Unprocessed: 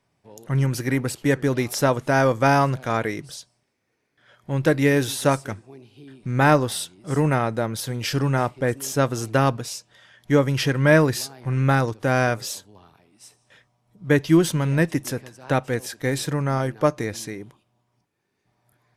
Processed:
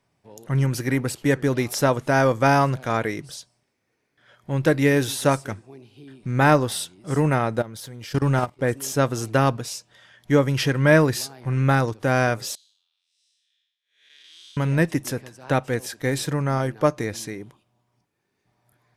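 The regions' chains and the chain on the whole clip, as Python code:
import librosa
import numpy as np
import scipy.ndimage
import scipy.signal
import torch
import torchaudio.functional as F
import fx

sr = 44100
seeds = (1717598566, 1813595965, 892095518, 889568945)

y = fx.chain(x, sr, fx.notch(hz=2600.0, q=18.0),
    fx.leveller(passes=1),
    fx.level_steps(step_db=19), at=(7.58, 8.61))
y = fx.chain(y, sr, fx.spec_blur(span_ms=252.0),
    fx.ladder_bandpass(hz=3900.0, resonance_pct=60), at=(12.55, 14.57))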